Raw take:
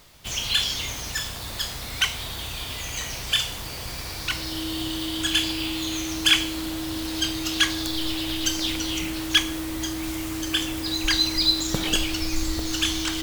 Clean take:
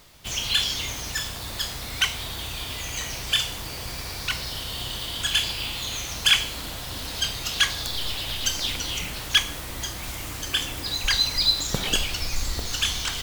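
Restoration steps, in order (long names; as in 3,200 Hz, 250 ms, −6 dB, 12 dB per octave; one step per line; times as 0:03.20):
notch filter 320 Hz, Q 30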